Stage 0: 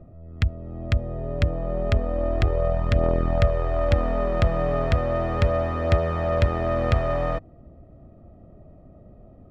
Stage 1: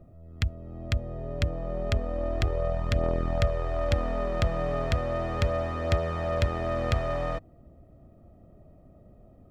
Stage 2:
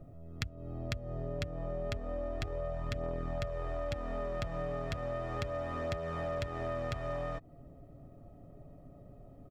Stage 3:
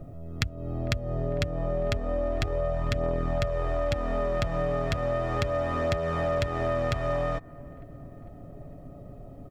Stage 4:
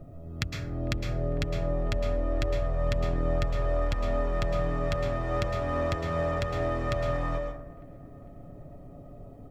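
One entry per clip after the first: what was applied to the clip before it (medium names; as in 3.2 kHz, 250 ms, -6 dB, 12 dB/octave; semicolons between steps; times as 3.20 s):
treble shelf 4.2 kHz +12 dB; trim -5.5 dB
comb 7.1 ms, depth 45%; compression 6:1, threshold -34 dBFS, peak gain reduction 14 dB
feedback echo behind a band-pass 451 ms, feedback 52%, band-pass 1.1 kHz, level -23 dB; trim +9 dB
plate-style reverb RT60 0.63 s, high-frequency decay 0.5×, pre-delay 100 ms, DRR 3 dB; trim -3.5 dB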